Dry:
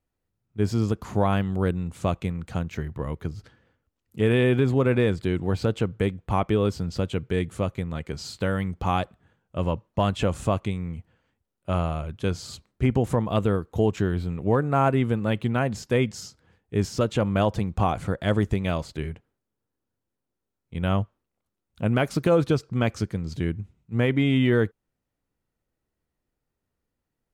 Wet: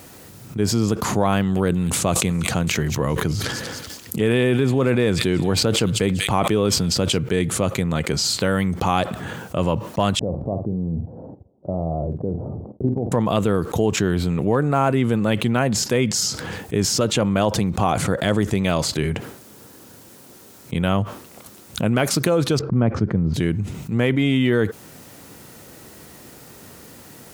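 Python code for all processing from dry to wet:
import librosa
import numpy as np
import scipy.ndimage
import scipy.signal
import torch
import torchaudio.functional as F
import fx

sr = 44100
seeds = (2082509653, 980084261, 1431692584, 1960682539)

y = fx.chain(x, sr, fx.echo_wet_highpass(ms=191, feedback_pct=31, hz=3800.0, wet_db=-9.5),
    fx.sustainer(db_per_s=110.0), at=(1.37, 7.18))
y = fx.chain(y, sr, fx.steep_lowpass(hz=750.0, slope=36),
    fx.level_steps(step_db=19),
    fx.doubler(ms=48.0, db=-12), at=(10.19, 13.12))
y = fx.chain(y, sr, fx.lowpass(hz=1300.0, slope=12),
    fx.low_shelf(hz=340.0, db=9.0), at=(22.59, 23.34))
y = scipy.signal.sosfilt(scipy.signal.butter(2, 120.0, 'highpass', fs=sr, output='sos'), y)
y = fx.bass_treble(y, sr, bass_db=0, treble_db=6)
y = fx.env_flatten(y, sr, amount_pct=70)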